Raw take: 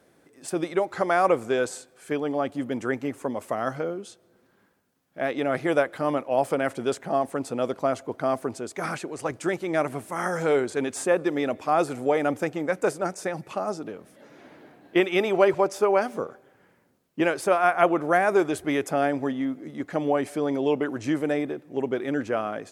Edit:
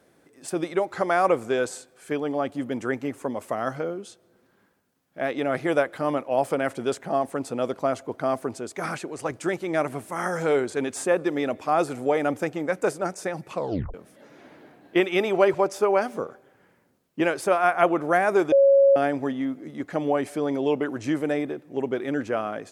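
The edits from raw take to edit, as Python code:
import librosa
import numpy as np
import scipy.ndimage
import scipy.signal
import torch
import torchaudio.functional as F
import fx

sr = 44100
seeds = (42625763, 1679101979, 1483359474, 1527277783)

y = fx.edit(x, sr, fx.tape_stop(start_s=13.53, length_s=0.41),
    fx.bleep(start_s=18.52, length_s=0.44, hz=552.0, db=-12.5), tone=tone)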